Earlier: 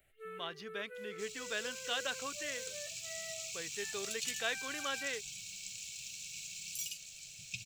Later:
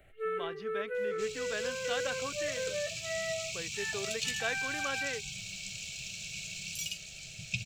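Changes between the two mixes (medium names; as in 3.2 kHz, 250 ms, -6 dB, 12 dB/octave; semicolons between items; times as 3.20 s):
speech -10.0 dB; master: remove pre-emphasis filter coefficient 0.8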